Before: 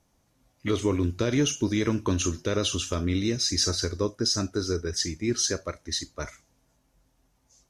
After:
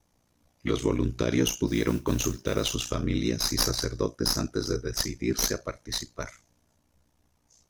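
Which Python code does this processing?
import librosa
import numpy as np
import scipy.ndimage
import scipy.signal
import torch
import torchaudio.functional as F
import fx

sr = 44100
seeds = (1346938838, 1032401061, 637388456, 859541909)

y = fx.tracing_dist(x, sr, depth_ms=0.054)
y = y * np.sin(2.0 * np.pi * 30.0 * np.arange(len(y)) / sr)
y = fx.mod_noise(y, sr, seeds[0], snr_db=24, at=(1.67, 2.74), fade=0.02)
y = y * librosa.db_to_amplitude(2.0)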